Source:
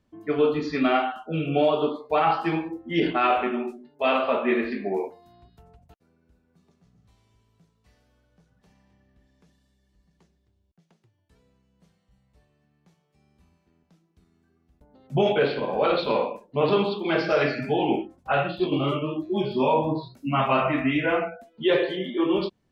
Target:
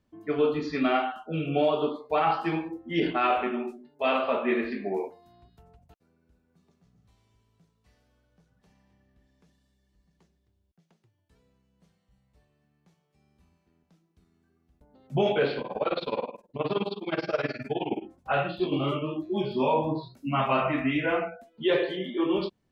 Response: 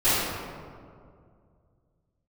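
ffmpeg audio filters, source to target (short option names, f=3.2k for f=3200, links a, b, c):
-filter_complex "[0:a]asettb=1/sr,asplit=3[a][b][c];[a]atrim=end=15.614[d];[b]atrim=start=15.61:end=18.03,asetpts=PTS-STARTPTS,afade=t=in:d=0.004:c=qsin,afade=t=out:st=2.416:d=0.004:c=qsin,tremolo=f=19:d=0.92[e];[c]atrim=start=18.026[f];[d][e]acrossfade=d=0.004:c1=hsin:c2=qsin[g];[g][f]acrossfade=d=0.004:c1=qsin:c2=hsin,volume=-3dB"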